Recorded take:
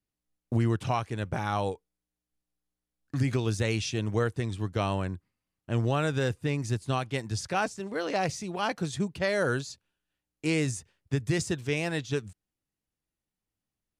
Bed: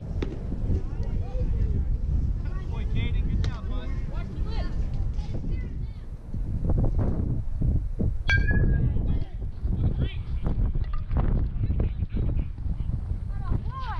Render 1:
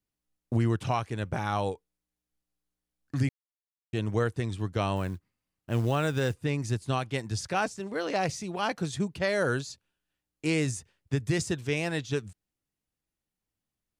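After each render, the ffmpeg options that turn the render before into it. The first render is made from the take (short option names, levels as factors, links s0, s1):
-filter_complex "[0:a]asettb=1/sr,asplit=3[s0][s1][s2];[s0]atrim=end=4.964[s3];[s1]atrim=start=4.96:end=6.43,asetpts=PTS-STARTPTS,afade=t=in:d=0.004:c=qsin,afade=t=out:st=1.466:d=0.004:c=qsin,acrusher=bits=7:mode=log:mix=0:aa=0.000001[s4];[s2]atrim=start=6.426[s5];[s3][s4]acrossfade=d=0.004:c1=hsin:c2=qsin[s6];[s6][s5]acrossfade=d=0.004:c1=qsin:c2=hsin,asplit=3[s7][s8][s9];[s7]atrim=end=3.29,asetpts=PTS-STARTPTS,afade=t=out:st=3.286:d=0.004:c=hsin[s10];[s8]atrim=start=3.29:end=3.93,asetpts=PTS-STARTPTS,volume=0[s11];[s9]atrim=start=3.93,asetpts=PTS-STARTPTS,afade=t=in:d=0.004:c=hsin[s12];[s10][s11][s12]concat=n=3:v=0:a=1"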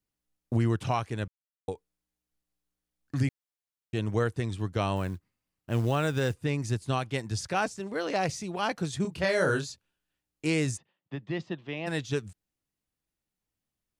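-filter_complex "[0:a]asettb=1/sr,asplit=3[s0][s1][s2];[s0]atrim=end=9.024[s3];[s1]atrim=start=9.02:end=9.7,asetpts=PTS-STARTPTS,afade=t=in:d=0.004:c=qsin,afade=t=out:st=0.676:d=0.004:c=qsin,asplit=2[s4][s5];[s5]adelay=27,volume=0.631[s6];[s4][s6]amix=inputs=2:normalize=0,atrim=end_sample=29988[s7];[s2]atrim=start=9.696[s8];[s3][s7]acrossfade=d=0.004:c1=hsin:c2=qsin[s9];[s9][s8]acrossfade=d=0.004:c1=qsin:c2=hsin,asplit=3[s10][s11][s12];[s10]afade=t=out:st=10.76:d=0.02[s13];[s11]highpass=f=180:w=0.5412,highpass=f=180:w=1.3066,equalizer=f=250:t=q:w=4:g=-8,equalizer=f=430:t=q:w=4:g=-10,equalizer=f=1500:t=q:w=4:g=-10,equalizer=f=2300:t=q:w=4:g=-8,lowpass=f=3100:w=0.5412,lowpass=f=3100:w=1.3066,afade=t=in:st=10.76:d=0.02,afade=t=out:st=11.86:d=0.02[s14];[s12]afade=t=in:st=11.86:d=0.02[s15];[s13][s14][s15]amix=inputs=3:normalize=0,asplit=3[s16][s17][s18];[s16]atrim=end=1.28,asetpts=PTS-STARTPTS,afade=t=out:st=1.276:d=0.004:c=hsin[s19];[s17]atrim=start=1.28:end=1.68,asetpts=PTS-STARTPTS,volume=0[s20];[s18]atrim=start=1.68,asetpts=PTS-STARTPTS,afade=t=in:d=0.004:c=hsin[s21];[s19][s20][s21]concat=n=3:v=0:a=1"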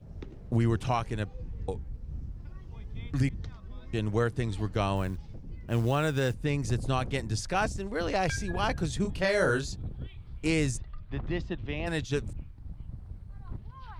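-filter_complex "[1:a]volume=0.224[s0];[0:a][s0]amix=inputs=2:normalize=0"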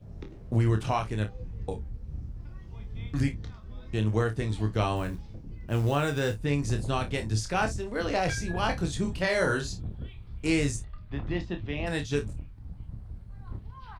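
-filter_complex "[0:a]asplit=2[s0][s1];[s1]adelay=18,volume=0.251[s2];[s0][s2]amix=inputs=2:normalize=0,aecho=1:1:28|55:0.447|0.15"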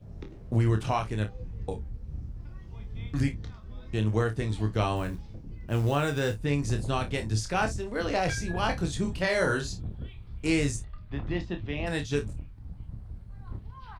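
-af anull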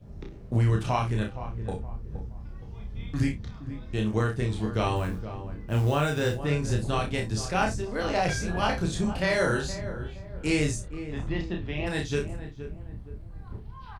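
-filter_complex "[0:a]asplit=2[s0][s1];[s1]adelay=33,volume=0.596[s2];[s0][s2]amix=inputs=2:normalize=0,asplit=2[s3][s4];[s4]adelay=469,lowpass=f=1200:p=1,volume=0.282,asplit=2[s5][s6];[s6]adelay=469,lowpass=f=1200:p=1,volume=0.4,asplit=2[s7][s8];[s8]adelay=469,lowpass=f=1200:p=1,volume=0.4,asplit=2[s9][s10];[s10]adelay=469,lowpass=f=1200:p=1,volume=0.4[s11];[s3][s5][s7][s9][s11]amix=inputs=5:normalize=0"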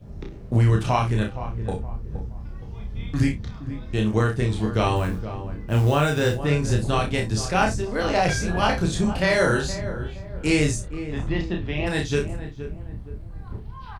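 -af "volume=1.78"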